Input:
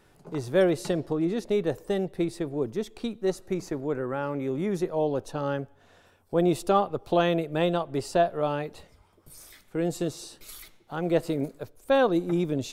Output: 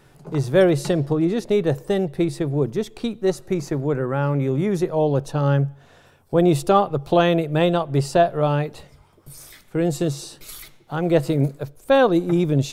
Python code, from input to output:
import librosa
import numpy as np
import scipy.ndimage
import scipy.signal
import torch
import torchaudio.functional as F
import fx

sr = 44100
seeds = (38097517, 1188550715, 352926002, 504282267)

y = fx.peak_eq(x, sr, hz=140.0, db=12.5, octaves=0.2)
y = y * librosa.db_to_amplitude(6.0)